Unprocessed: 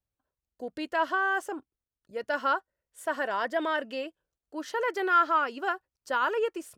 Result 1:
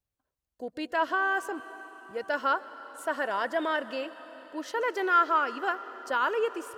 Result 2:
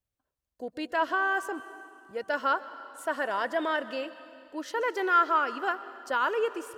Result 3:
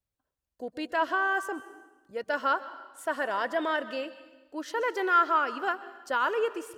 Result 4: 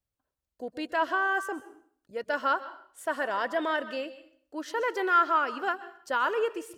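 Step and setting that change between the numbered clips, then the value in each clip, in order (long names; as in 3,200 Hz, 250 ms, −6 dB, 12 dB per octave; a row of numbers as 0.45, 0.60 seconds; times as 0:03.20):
dense smooth reverb, RT60: 5.1, 2.4, 1.1, 0.53 seconds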